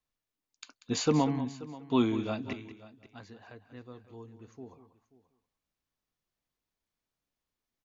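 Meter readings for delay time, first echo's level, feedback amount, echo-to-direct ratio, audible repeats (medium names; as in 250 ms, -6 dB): 189 ms, -13.5 dB, no regular repeats, -12.5 dB, 3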